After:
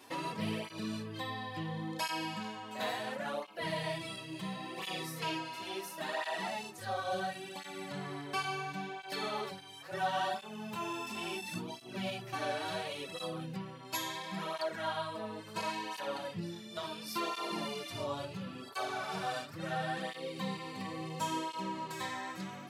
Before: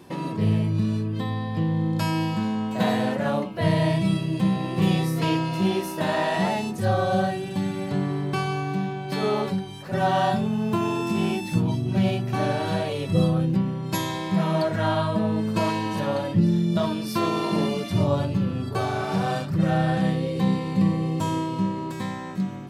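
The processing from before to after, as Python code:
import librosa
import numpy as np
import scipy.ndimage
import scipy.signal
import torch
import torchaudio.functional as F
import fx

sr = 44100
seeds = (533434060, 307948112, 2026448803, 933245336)

y = fx.highpass(x, sr, hz=1100.0, slope=6)
y = fx.rider(y, sr, range_db=10, speed_s=2.0)
y = fx.flanger_cancel(y, sr, hz=0.72, depth_ms=6.1)
y = F.gain(torch.from_numpy(y), -3.0).numpy()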